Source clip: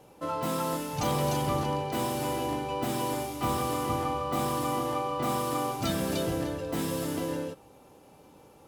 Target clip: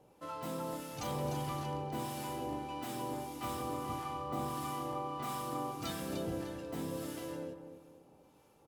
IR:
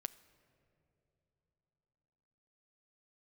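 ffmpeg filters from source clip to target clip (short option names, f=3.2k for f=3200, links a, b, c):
-filter_complex "[0:a]acrossover=split=1000[a][b];[a]aeval=exprs='val(0)*(1-0.5/2+0.5/2*cos(2*PI*1.6*n/s))':c=same[c];[b]aeval=exprs='val(0)*(1-0.5/2-0.5/2*cos(2*PI*1.6*n/s))':c=same[d];[c][d]amix=inputs=2:normalize=0,asplit=2[e][f];[f]adelay=246,lowpass=f=940:p=1,volume=-8dB,asplit=2[g][h];[h]adelay=246,lowpass=f=940:p=1,volume=0.42,asplit=2[i][j];[j]adelay=246,lowpass=f=940:p=1,volume=0.42,asplit=2[k][l];[l]adelay=246,lowpass=f=940:p=1,volume=0.42,asplit=2[m][n];[n]adelay=246,lowpass=f=940:p=1,volume=0.42[o];[g][i][k][m][o]amix=inputs=5:normalize=0[p];[e][p]amix=inputs=2:normalize=0,volume=-7.5dB"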